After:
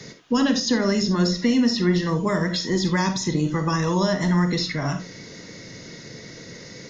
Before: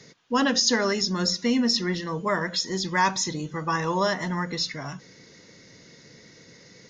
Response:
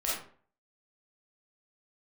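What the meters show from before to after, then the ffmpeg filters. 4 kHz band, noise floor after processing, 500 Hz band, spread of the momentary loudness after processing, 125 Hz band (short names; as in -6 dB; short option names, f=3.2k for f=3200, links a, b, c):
-1.0 dB, -42 dBFS, +3.0 dB, 19 LU, +9.5 dB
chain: -filter_complex "[0:a]acrossover=split=300|3500[a][b][c];[a]acompressor=threshold=-31dB:ratio=4[d];[b]acompressor=threshold=-37dB:ratio=4[e];[c]acompressor=threshold=-41dB:ratio=4[f];[d][e][f]amix=inputs=3:normalize=0,asplit=2[g][h];[1:a]atrim=start_sample=2205,afade=t=out:st=0.14:d=0.01,atrim=end_sample=6615,lowshelf=f=430:g=9.5[i];[h][i]afir=irnorm=-1:irlink=0,volume=-11.5dB[j];[g][j]amix=inputs=2:normalize=0,volume=7dB"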